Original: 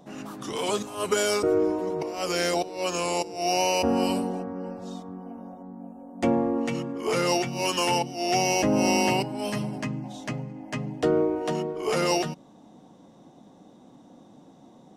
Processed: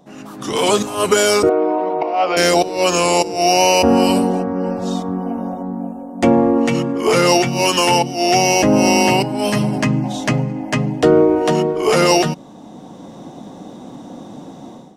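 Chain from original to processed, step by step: level rider gain up to 15.5 dB; in parallel at -2 dB: peak limiter -8.5 dBFS, peak gain reduction 7 dB; 1.49–2.37 s: on the sum: cabinet simulation 370–3200 Hz, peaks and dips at 420 Hz -7 dB, 730 Hz +8 dB, 1.7 kHz -6 dB, 3.1 kHz -4 dB; trim -3.5 dB

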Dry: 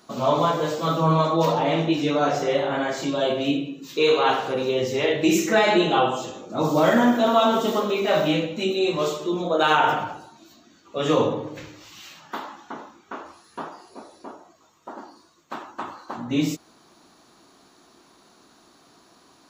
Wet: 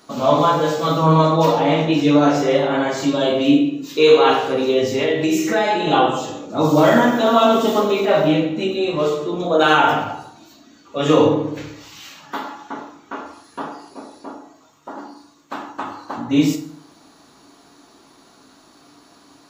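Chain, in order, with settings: 4.89–5.87 s: compression 4:1, threshold -22 dBFS, peak gain reduction 7.5 dB; 8.05–9.40 s: treble shelf 3.4 kHz -9.5 dB; reverberation RT60 0.60 s, pre-delay 4 ms, DRR 4.5 dB; trim +3.5 dB

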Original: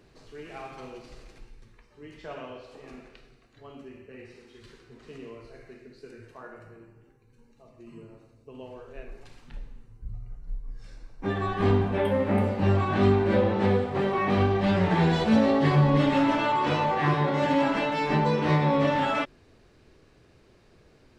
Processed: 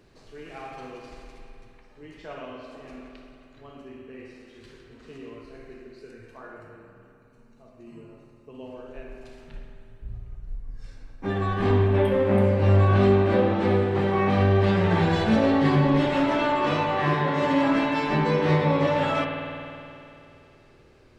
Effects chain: spring tank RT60 2.8 s, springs 51 ms, chirp 40 ms, DRR 3 dB

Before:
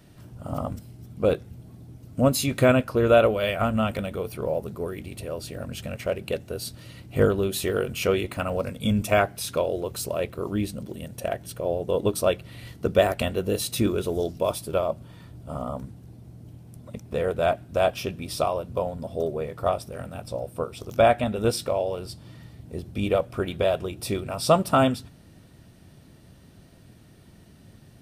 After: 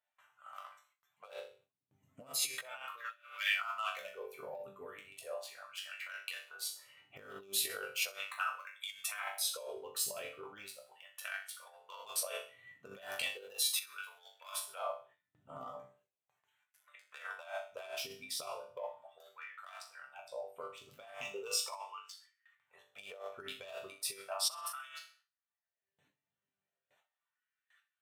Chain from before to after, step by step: local Wiener filter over 9 samples; reverb removal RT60 1.5 s; chord resonator G2 sus4, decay 0.41 s; gate with hold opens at -57 dBFS; compressor with a negative ratio -44 dBFS, ratio -1; 21.14–22.13 s: rippled EQ curve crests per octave 0.74, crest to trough 10 dB; on a send: feedback echo behind a high-pass 64 ms, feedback 33%, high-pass 2 kHz, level -18.5 dB; on the sum: LFO high-pass sine 0.37 Hz 260–1600 Hz; amplifier tone stack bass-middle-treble 10-0-10; trim +11 dB

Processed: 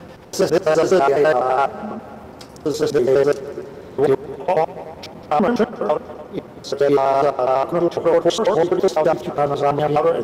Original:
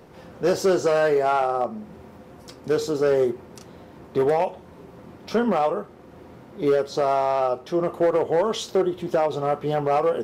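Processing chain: slices played last to first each 83 ms, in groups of 4; multi-head delay 98 ms, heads second and third, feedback 51%, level -19 dB; trim +5 dB

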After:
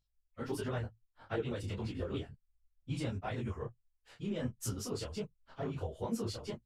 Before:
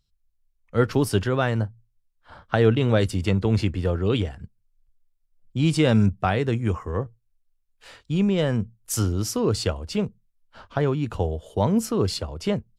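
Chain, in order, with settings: compression 6:1, threshold -21 dBFS, peak gain reduction 9 dB; flange 0.2 Hz, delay 6.7 ms, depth 2.2 ms, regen +49%; plain phase-vocoder stretch 0.52×; detune thickener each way 52 cents

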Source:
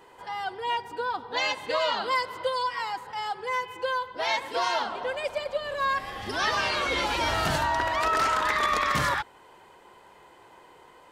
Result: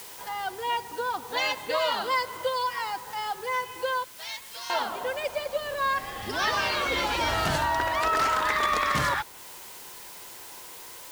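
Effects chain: 4.04–4.70 s: pre-emphasis filter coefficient 0.97; word length cut 8-bit, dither triangular; tape noise reduction on one side only encoder only

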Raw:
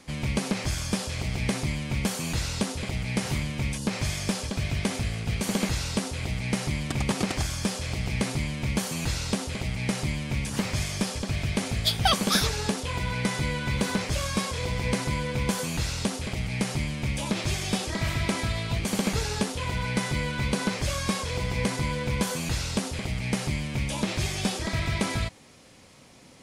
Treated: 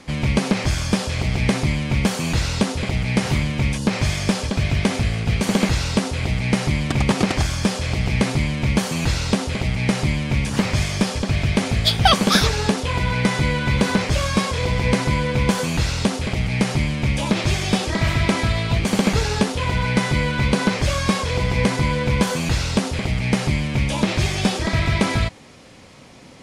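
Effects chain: treble shelf 7.4 kHz -11 dB; trim +8.5 dB

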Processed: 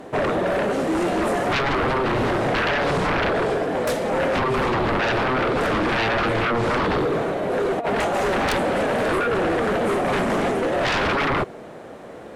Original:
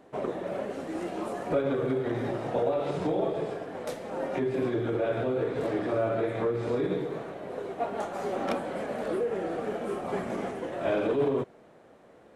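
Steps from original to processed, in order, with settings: 7.53–7.98 s: compressor with a negative ratio -34 dBFS, ratio -0.5; sine folder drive 15 dB, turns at -15.5 dBFS; trim -2.5 dB

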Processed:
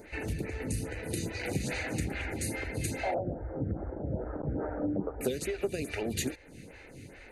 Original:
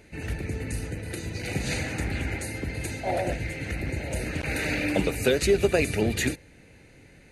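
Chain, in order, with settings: 3.14–5.21 s: steep low-pass 1.3 kHz 48 dB/octave; compression 6:1, threshold -34 dBFS, peak gain reduction 16.5 dB; lamp-driven phase shifter 2.4 Hz; trim +7 dB

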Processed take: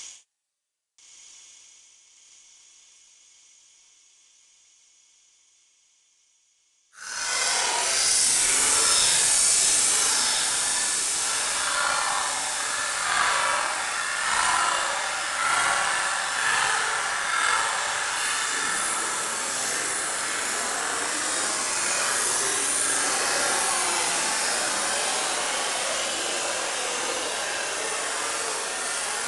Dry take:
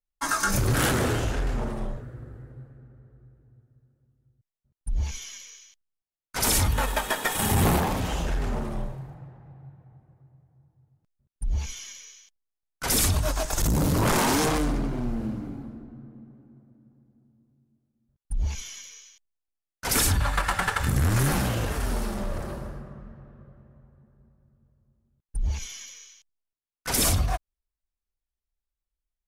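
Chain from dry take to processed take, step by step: Bessel high-pass 600 Hz, order 4; treble shelf 4.1 kHz +9.5 dB; reverse; upward compressor, threshold -35 dBFS; reverse; waveshaping leveller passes 3; Paulstretch 11×, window 0.05 s, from 19.18 s; power-law waveshaper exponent 1.4; on a send: echo that smears into a reverb 1333 ms, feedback 48%, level -10 dB; on the sum: resampled via 22.05 kHz; level flattener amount 50%; trim -7 dB

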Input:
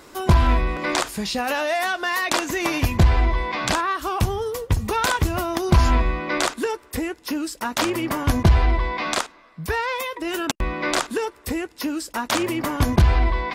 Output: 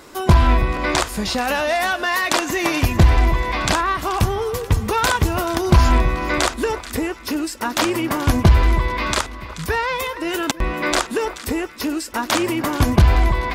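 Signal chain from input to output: 8.47–9.23 s: Butterworth band-stop 720 Hz, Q 5.9; two-band feedback delay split 1.3 kHz, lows 324 ms, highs 432 ms, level -14.5 dB; trim +3 dB

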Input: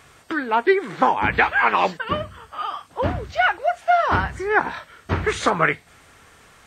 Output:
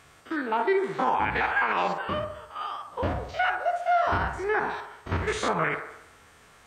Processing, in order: spectrogram pixelated in time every 50 ms; feedback echo behind a band-pass 68 ms, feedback 55%, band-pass 790 Hz, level -7 dB; peak limiter -11.5 dBFS, peak gain reduction 5.5 dB; trim -3.5 dB

